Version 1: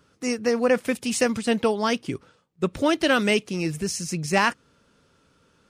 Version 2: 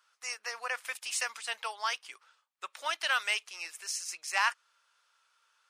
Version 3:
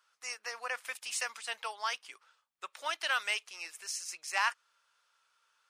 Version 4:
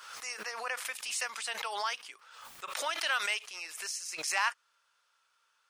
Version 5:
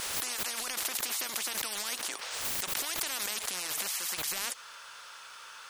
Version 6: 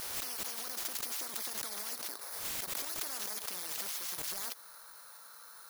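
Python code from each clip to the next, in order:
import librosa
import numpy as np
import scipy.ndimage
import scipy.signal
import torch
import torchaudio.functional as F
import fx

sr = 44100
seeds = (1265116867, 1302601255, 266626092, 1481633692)

y1 = scipy.signal.sosfilt(scipy.signal.butter(4, 910.0, 'highpass', fs=sr, output='sos'), x)
y1 = F.gain(torch.from_numpy(y1), -5.0).numpy()
y2 = fx.low_shelf(y1, sr, hz=320.0, db=7.0)
y2 = F.gain(torch.from_numpy(y2), -2.5).numpy()
y3 = fx.pre_swell(y2, sr, db_per_s=48.0)
y4 = fx.spectral_comp(y3, sr, ratio=10.0)
y4 = F.gain(torch.from_numpy(y4), 1.5).numpy()
y5 = fx.bit_reversed(y4, sr, seeds[0], block=16)
y5 = F.gain(torch.from_numpy(y5), -4.5).numpy()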